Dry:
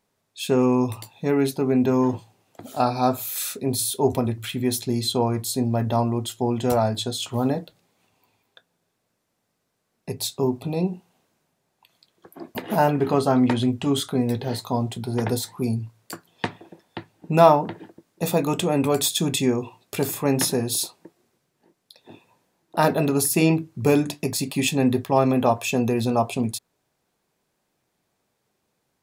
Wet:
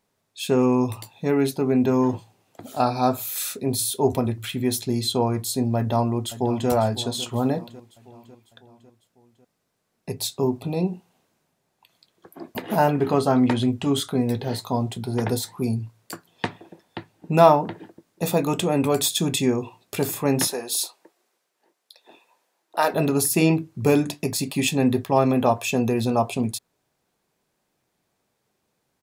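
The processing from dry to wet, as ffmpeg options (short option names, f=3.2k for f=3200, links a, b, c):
-filter_complex "[0:a]asplit=2[a][b];[b]afade=t=in:st=5.76:d=0.01,afade=t=out:st=6.69:d=0.01,aecho=0:1:550|1100|1650|2200|2750:0.188365|0.103601|0.0569804|0.0313392|0.0172366[c];[a][c]amix=inputs=2:normalize=0,asettb=1/sr,asplit=3[d][e][f];[d]atrim=end=20.474[g];[e]atrim=start=20.47:end=22.94,asetpts=PTS-STARTPTS,afade=t=in:d=0.004:c=qsin,afade=t=out:st=2.466:d=0.004:c=qsin,highpass=520[h];[f]atrim=start=22.936[i];[g][h]acrossfade=d=0.004:c1=hsin:c2=qsin[j];[j][i]acrossfade=d=0.004:c1=qsin:c2=hsin"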